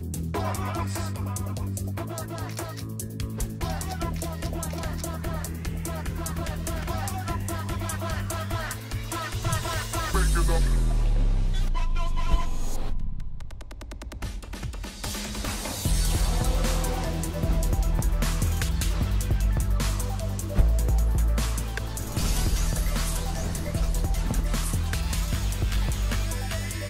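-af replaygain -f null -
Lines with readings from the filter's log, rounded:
track_gain = +14.2 dB
track_peak = 0.282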